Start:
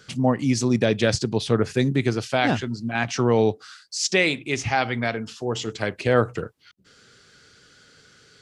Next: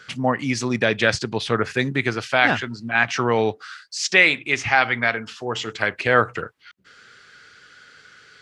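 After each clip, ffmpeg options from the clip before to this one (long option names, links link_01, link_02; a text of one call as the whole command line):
ffmpeg -i in.wav -af "equalizer=frequency=1700:width_type=o:width=2.4:gain=13.5,volume=-4.5dB" out.wav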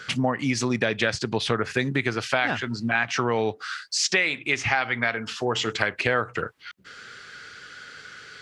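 ffmpeg -i in.wav -af "acompressor=threshold=-27dB:ratio=4,volume=5.5dB" out.wav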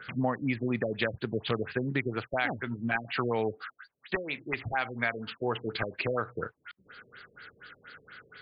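ffmpeg -i in.wav -af "aeval=exprs='(mod(2.82*val(0)+1,2)-1)/2.82':channel_layout=same,afftfilt=real='re*lt(b*sr/1024,580*pow(5000/580,0.5+0.5*sin(2*PI*4.2*pts/sr)))':imag='im*lt(b*sr/1024,580*pow(5000/580,0.5+0.5*sin(2*PI*4.2*pts/sr)))':win_size=1024:overlap=0.75,volume=-5dB" out.wav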